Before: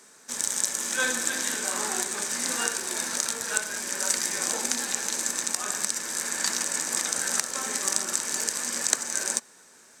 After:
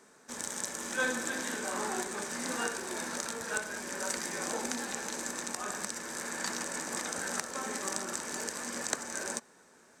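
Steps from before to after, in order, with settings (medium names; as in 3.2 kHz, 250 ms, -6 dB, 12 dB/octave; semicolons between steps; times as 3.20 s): treble shelf 2.1 kHz -12 dB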